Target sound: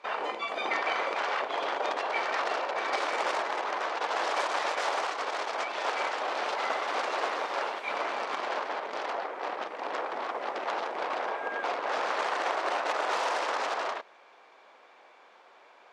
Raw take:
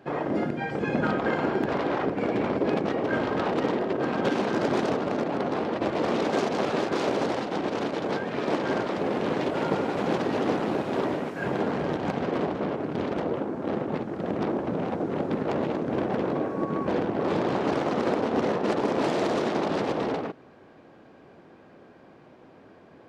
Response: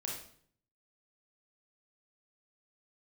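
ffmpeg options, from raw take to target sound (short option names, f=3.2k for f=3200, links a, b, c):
-af "highpass=540,lowpass=4.5k,asetrate=63945,aresample=44100"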